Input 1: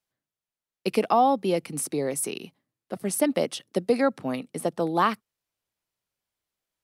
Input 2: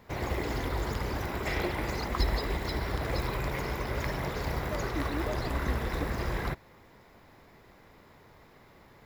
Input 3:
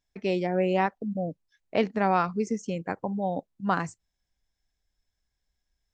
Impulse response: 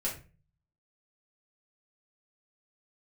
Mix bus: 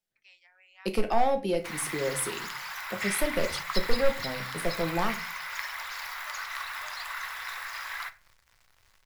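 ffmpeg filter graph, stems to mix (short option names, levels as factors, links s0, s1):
-filter_complex "[0:a]equalizer=f=1100:w=3.3:g=-7.5,asoftclip=type=hard:threshold=0.15,volume=0.473,asplit=2[s0][s1];[s1]volume=0.531[s2];[1:a]highpass=f=1100:w=0.5412,highpass=f=1100:w=1.3066,acrusher=bits=8:mix=0:aa=0.5,adelay=1550,volume=1.26,asplit=2[s3][s4];[s4]volume=0.266[s5];[2:a]highpass=f=1300:w=0.5412,highpass=f=1300:w=1.3066,volume=0.112,asplit=2[s6][s7];[s7]volume=0.1[s8];[3:a]atrim=start_sample=2205[s9];[s2][s5][s8]amix=inputs=3:normalize=0[s10];[s10][s9]afir=irnorm=-1:irlink=0[s11];[s0][s3][s6][s11]amix=inputs=4:normalize=0,asubboost=boost=12:cutoff=71"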